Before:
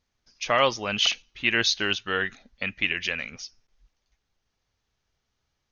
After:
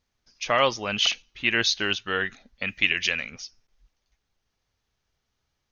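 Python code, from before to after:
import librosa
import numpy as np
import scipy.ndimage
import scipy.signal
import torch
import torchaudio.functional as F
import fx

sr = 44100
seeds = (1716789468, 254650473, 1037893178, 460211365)

y = fx.high_shelf(x, sr, hz=3400.0, db=10.0, at=(2.68, 3.2))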